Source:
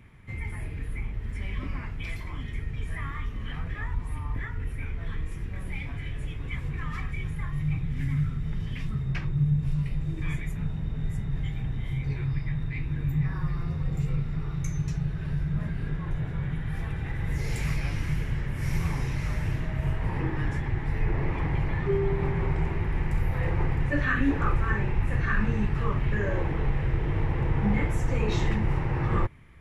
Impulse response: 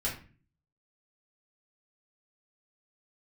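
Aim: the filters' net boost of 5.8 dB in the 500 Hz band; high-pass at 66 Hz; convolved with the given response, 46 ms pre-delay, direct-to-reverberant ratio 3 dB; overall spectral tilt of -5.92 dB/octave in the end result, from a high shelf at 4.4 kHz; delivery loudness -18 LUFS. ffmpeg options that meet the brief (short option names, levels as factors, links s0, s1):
-filter_complex "[0:a]highpass=66,equalizer=f=500:t=o:g=7.5,highshelf=f=4400:g=5.5,asplit=2[s0][s1];[1:a]atrim=start_sample=2205,adelay=46[s2];[s1][s2]afir=irnorm=-1:irlink=0,volume=0.398[s3];[s0][s3]amix=inputs=2:normalize=0,volume=2.82"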